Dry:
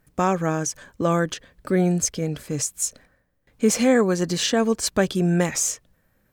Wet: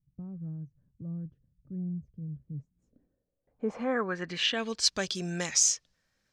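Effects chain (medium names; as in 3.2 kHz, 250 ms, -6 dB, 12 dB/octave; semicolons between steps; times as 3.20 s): treble shelf 5.6 kHz -10 dB; low-pass sweep 140 Hz -> 5.4 kHz, 2.48–4.92 s; pre-emphasis filter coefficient 0.9; trim +5 dB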